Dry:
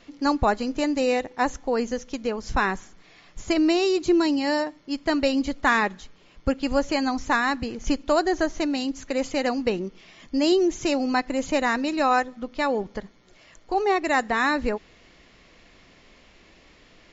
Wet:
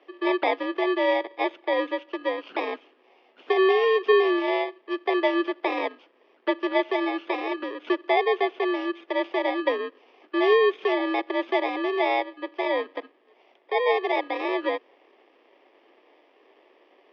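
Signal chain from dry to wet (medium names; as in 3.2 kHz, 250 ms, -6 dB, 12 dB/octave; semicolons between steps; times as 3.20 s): bit-reversed sample order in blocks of 32 samples; mistuned SSB +69 Hz 270–3300 Hz; trim +2.5 dB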